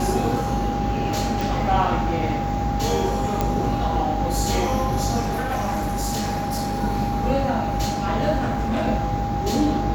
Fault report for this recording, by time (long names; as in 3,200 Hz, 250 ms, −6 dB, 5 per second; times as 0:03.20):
mains hum 50 Hz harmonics 7 −28 dBFS
whistle 810 Hz −26 dBFS
0:01.41: click
0:03.41: click −8 dBFS
0:05.20–0:06.82: clipping −20.5 dBFS
0:08.39–0:08.88: clipping −19.5 dBFS